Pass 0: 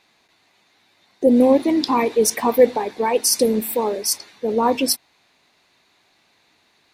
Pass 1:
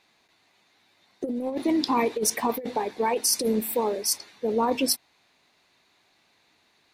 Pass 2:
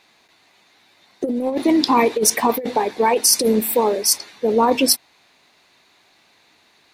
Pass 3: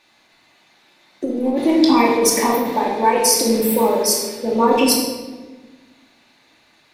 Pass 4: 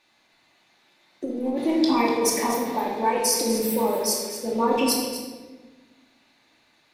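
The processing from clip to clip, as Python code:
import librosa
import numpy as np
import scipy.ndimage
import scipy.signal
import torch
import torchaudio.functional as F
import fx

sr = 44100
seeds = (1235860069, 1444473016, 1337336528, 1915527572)

y1 = fx.over_compress(x, sr, threshold_db=-17.0, ratio=-0.5)
y1 = y1 * 10.0 ** (-6.0 / 20.0)
y2 = fx.low_shelf(y1, sr, hz=200.0, db=-3.5)
y2 = y2 * 10.0 ** (8.5 / 20.0)
y3 = fx.room_shoebox(y2, sr, seeds[0], volume_m3=970.0, walls='mixed', distance_m=2.5)
y3 = y3 * 10.0 ** (-4.0 / 20.0)
y4 = y3 + 10.0 ** (-11.5 / 20.0) * np.pad(y3, (int(244 * sr / 1000.0), 0))[:len(y3)]
y4 = y4 * 10.0 ** (-7.0 / 20.0)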